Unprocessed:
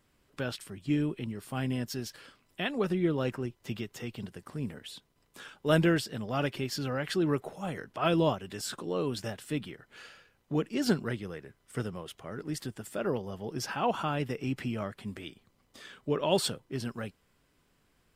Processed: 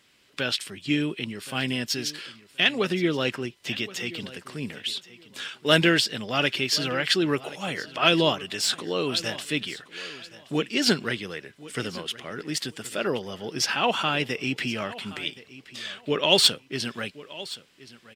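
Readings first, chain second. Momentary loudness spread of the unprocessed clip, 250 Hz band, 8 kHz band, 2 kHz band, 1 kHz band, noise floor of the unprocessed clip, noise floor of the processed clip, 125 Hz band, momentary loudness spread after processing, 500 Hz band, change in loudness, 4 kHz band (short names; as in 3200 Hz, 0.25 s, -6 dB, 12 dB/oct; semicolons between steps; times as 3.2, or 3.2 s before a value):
16 LU, +3.0 dB, +10.5 dB, +12.0 dB, +5.0 dB, -71 dBFS, -57 dBFS, 0.0 dB, 16 LU, +4.0 dB, +7.0 dB, +15.5 dB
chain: tracing distortion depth 0.024 ms; weighting filter D; feedback echo 1.073 s, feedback 20%, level -18 dB; gain +4.5 dB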